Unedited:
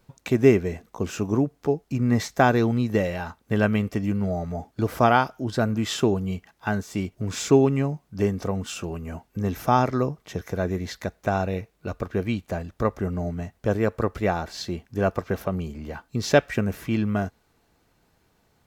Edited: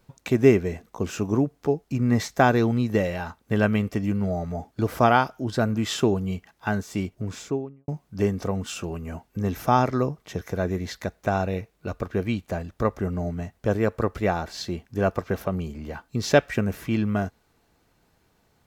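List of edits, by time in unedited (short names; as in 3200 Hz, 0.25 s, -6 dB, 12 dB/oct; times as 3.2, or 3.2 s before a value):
6.99–7.88 studio fade out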